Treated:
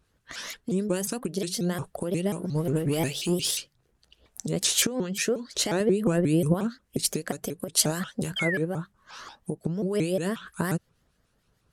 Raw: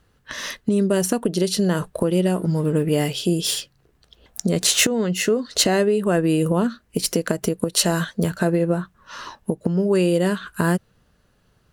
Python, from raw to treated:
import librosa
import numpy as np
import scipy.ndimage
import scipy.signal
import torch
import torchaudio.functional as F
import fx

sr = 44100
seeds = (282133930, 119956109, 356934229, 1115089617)

y = scipy.signal.sosfilt(scipy.signal.butter(2, 11000.0, 'lowpass', fs=sr, output='sos'), x)
y = fx.leveller(y, sr, passes=1, at=(2.55, 3.51))
y = fx.high_shelf(y, sr, hz=7000.0, db=9.5)
y = fx.harmonic_tremolo(y, sr, hz=6.6, depth_pct=50, crossover_hz=1600.0)
y = fx.low_shelf(y, sr, hz=280.0, db=9.5, at=(5.8, 6.54))
y = fx.spec_paint(y, sr, seeds[0], shape='fall', start_s=8.36, length_s=0.22, low_hz=1400.0, high_hz=3000.0, level_db=-23.0)
y = fx.vibrato_shape(y, sr, shape='saw_up', rate_hz=5.6, depth_cents=250.0)
y = y * librosa.db_to_amplitude(-6.0)